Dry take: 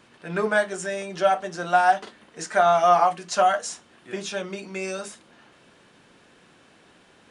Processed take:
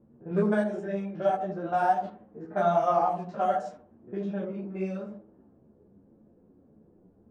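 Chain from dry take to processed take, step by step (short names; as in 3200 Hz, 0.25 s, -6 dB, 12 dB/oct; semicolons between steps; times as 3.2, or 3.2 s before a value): stepped spectrum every 50 ms; tilt shelf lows +9 dB, about 780 Hz; low-pass opened by the level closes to 530 Hz, open at -17.5 dBFS; dark delay 80 ms, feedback 30%, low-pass 740 Hz, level -4.5 dB; ensemble effect; gain -3 dB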